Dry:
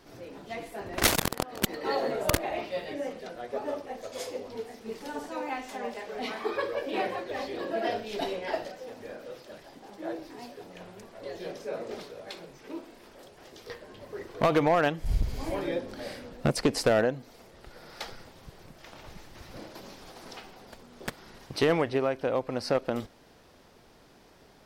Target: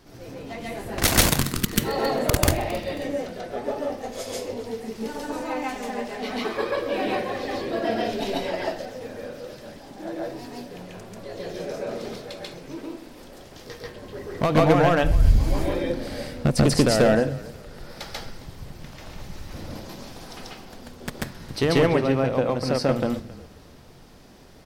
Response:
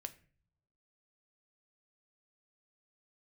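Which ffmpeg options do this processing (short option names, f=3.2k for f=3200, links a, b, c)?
-filter_complex "[0:a]asettb=1/sr,asplit=3[a][b][c];[a]atrim=end=1.264[d];[b]atrim=start=1.26:end=1.73,asetpts=PTS-STARTPTS,afade=t=in:d=0.004:c=qsin,afade=t=out:st=0.466:d=0.004:c=qsin,asuperstop=centerf=660:order=4:qfactor=0.84[e];[c]atrim=start=1.726[f];[d][e]acrossfade=d=0.004:c1=hsin:c2=qsin[g];[g][f]acrossfade=d=0.004:c1=qsin:c2=hsin,bass=f=250:g=7,treble=f=4k:g=3,asplit=4[h][i][j][k];[i]adelay=269,afreqshift=-31,volume=-19.5dB[l];[j]adelay=538,afreqshift=-62,volume=-28.4dB[m];[k]adelay=807,afreqshift=-93,volume=-37.2dB[n];[h][l][m][n]amix=inputs=4:normalize=0,asplit=2[o][p];[1:a]atrim=start_sample=2205,adelay=139[q];[p][q]afir=irnorm=-1:irlink=0,volume=6.5dB[r];[o][r]amix=inputs=2:normalize=0"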